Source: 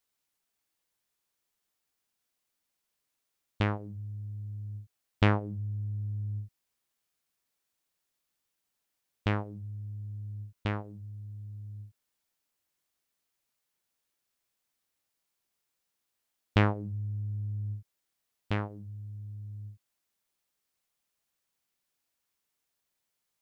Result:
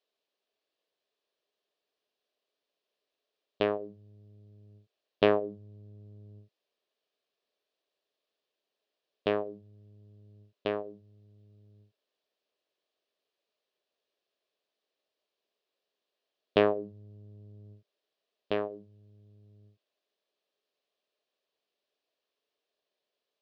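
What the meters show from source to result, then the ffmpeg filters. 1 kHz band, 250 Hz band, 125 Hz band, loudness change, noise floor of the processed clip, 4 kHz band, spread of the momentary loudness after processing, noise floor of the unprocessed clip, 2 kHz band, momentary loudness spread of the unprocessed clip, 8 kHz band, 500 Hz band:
0.0 dB, −2.0 dB, −16.0 dB, +3.5 dB, below −85 dBFS, +1.5 dB, 20 LU, −83 dBFS, −2.5 dB, 17 LU, can't be measured, +9.5 dB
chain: -af "highpass=330,equalizer=frequency=420:width_type=q:width=4:gain=9,equalizer=frequency=610:width_type=q:width=4:gain=8,equalizer=frequency=880:width_type=q:width=4:gain=-7,equalizer=frequency=1400:width_type=q:width=4:gain=-8,equalizer=frequency=2100:width_type=q:width=4:gain=-8,lowpass=frequency=4300:width=0.5412,lowpass=frequency=4300:width=1.3066,volume=3dB"

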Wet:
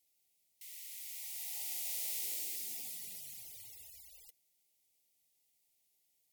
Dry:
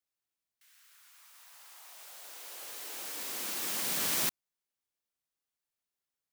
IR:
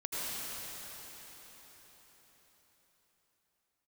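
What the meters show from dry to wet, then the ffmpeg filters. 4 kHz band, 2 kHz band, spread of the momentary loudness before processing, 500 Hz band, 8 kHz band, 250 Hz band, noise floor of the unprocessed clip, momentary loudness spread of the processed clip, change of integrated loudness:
−9.0 dB, −13.0 dB, 21 LU, −17.0 dB, −5.5 dB, −20.0 dB, below −85 dBFS, 17 LU, −7.0 dB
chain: -af "afftfilt=real='re*lt(hypot(re,im),0.00355)':imag='im*lt(hypot(re,im),0.00355)':win_size=1024:overlap=0.75,asuperstop=centerf=1300:order=20:qfactor=1.3,aemphasis=mode=production:type=cd,volume=6.5dB"

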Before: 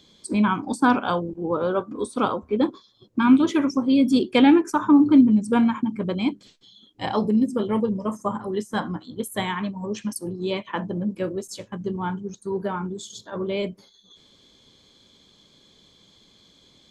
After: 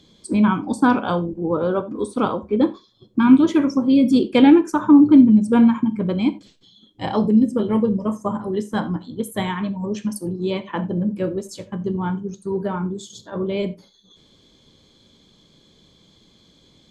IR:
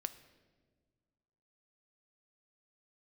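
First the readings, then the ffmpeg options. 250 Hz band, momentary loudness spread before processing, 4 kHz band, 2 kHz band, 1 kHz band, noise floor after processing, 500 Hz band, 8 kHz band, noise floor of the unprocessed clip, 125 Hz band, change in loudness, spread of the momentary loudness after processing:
+4.0 dB, 14 LU, −0.5 dB, 0.0 dB, +0.5 dB, −56 dBFS, +3.0 dB, can't be measured, −58 dBFS, +5.5 dB, +4.0 dB, 14 LU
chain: -filter_complex "[0:a]lowshelf=frequency=470:gain=7[link_01];[1:a]atrim=start_sample=2205,atrim=end_sample=3528,asetrate=37044,aresample=44100[link_02];[link_01][link_02]afir=irnorm=-1:irlink=0"

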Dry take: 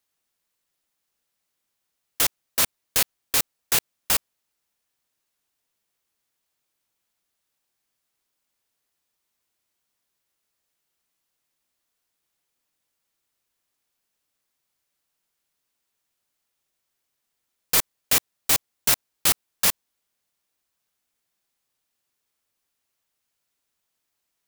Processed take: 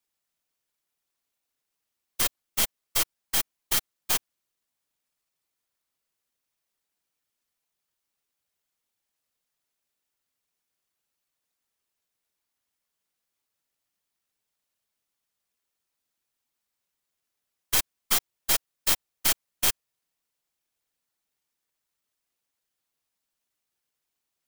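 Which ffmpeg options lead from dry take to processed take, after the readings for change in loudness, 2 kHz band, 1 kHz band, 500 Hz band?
−3.5 dB, −4.0 dB, −3.5 dB, −5.0 dB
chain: -af "afftfilt=real='hypot(re,im)*cos(2*PI*random(0))':imag='hypot(re,im)*sin(2*PI*random(1))':win_size=512:overlap=0.75,aeval=exprs='val(0)*sin(2*PI*1600*n/s)':channel_layout=same,aeval=exprs='0.299*(cos(1*acos(clip(val(0)/0.299,-1,1)))-cos(1*PI/2))+0.0473*(cos(6*acos(clip(val(0)/0.299,-1,1)))-cos(6*PI/2))':channel_layout=same,volume=4.5dB"

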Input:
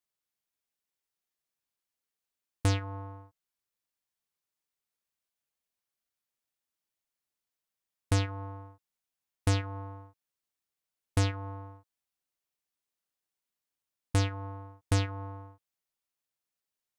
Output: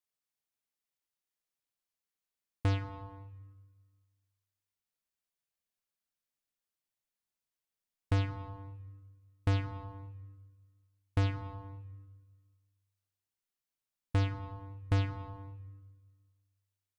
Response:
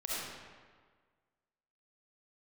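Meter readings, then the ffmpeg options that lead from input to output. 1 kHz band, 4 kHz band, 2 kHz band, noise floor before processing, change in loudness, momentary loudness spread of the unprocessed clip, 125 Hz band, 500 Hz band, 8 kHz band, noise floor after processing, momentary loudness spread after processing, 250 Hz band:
−4.0 dB, −7.5 dB, −4.5 dB, below −85 dBFS, −3.0 dB, 16 LU, −1.5 dB, −4.5 dB, below −15 dB, below −85 dBFS, 19 LU, −3.5 dB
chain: -filter_complex "[0:a]acrossover=split=4000[link_01][link_02];[link_02]acompressor=threshold=-52dB:ratio=4:attack=1:release=60[link_03];[link_01][link_03]amix=inputs=2:normalize=0,asplit=2[link_04][link_05];[link_05]asubboost=boost=10:cutoff=220[link_06];[1:a]atrim=start_sample=2205,lowshelf=frequency=480:gain=-7[link_07];[link_06][link_07]afir=irnorm=-1:irlink=0,volume=-16.5dB[link_08];[link_04][link_08]amix=inputs=2:normalize=0,volume=-4.5dB"

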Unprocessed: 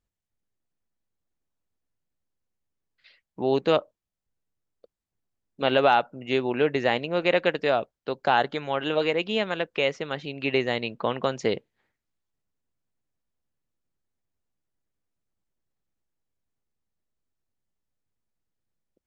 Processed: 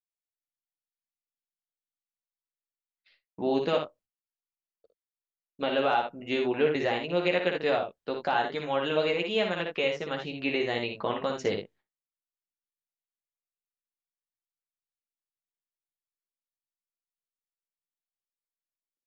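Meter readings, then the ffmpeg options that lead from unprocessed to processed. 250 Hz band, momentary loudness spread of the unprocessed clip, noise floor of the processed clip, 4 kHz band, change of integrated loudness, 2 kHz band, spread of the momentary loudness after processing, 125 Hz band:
−2.5 dB, 7 LU, below −85 dBFS, −3.0 dB, −3.5 dB, −3.5 dB, 7 LU, −4.5 dB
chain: -af "alimiter=limit=-12dB:level=0:latency=1:release=237,aecho=1:1:11|59|79:0.596|0.562|0.355,agate=range=-33dB:threshold=-47dB:ratio=3:detection=peak,volume=-4dB"

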